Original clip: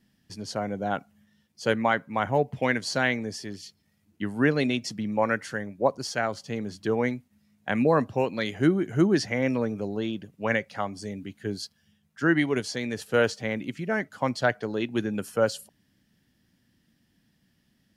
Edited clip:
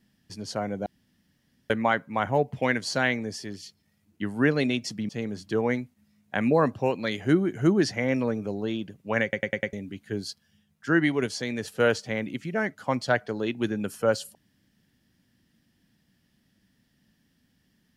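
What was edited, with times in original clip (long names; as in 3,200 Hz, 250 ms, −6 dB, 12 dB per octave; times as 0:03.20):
0:00.86–0:01.70: fill with room tone
0:05.09–0:06.43: remove
0:10.57: stutter in place 0.10 s, 5 plays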